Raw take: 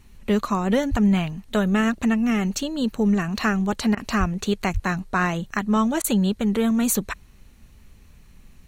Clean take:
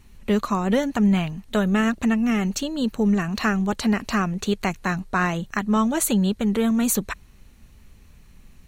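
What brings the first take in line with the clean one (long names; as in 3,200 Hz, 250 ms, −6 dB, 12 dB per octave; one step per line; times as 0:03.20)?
high-pass at the plosives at 0:00.90/0:04.19/0:04.73
repair the gap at 0:03.95/0:06.02, 21 ms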